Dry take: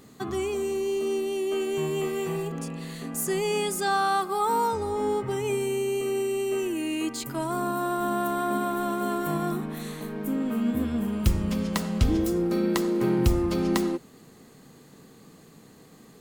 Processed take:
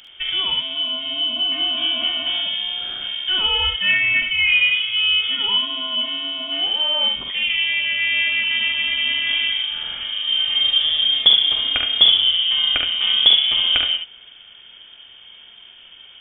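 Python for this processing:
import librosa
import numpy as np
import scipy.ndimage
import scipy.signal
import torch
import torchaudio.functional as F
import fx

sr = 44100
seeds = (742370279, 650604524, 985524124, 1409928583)

y = fx.freq_invert(x, sr, carrier_hz=3400)
y = fx.room_early_taps(y, sr, ms=(46, 71), db=(-7.0, -5.5))
y = y * 10.0 ** (6.0 / 20.0)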